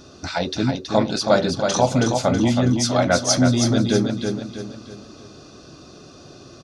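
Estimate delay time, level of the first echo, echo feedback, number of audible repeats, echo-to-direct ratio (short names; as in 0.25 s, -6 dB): 0.323 s, -5.5 dB, 42%, 4, -4.5 dB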